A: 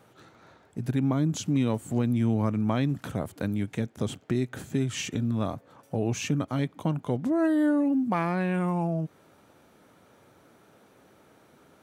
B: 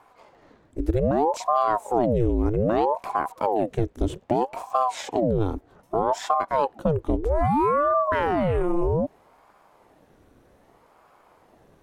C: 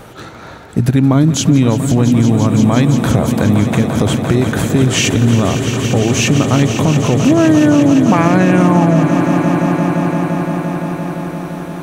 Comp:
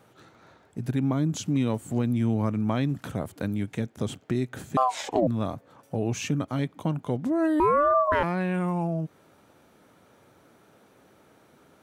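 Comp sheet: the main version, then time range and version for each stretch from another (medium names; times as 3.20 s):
A
4.77–5.27 s: from B
7.60–8.23 s: from B
not used: C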